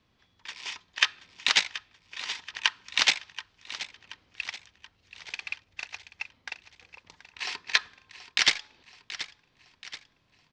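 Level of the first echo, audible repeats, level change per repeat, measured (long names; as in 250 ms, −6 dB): −14.5 dB, 4, −6.0 dB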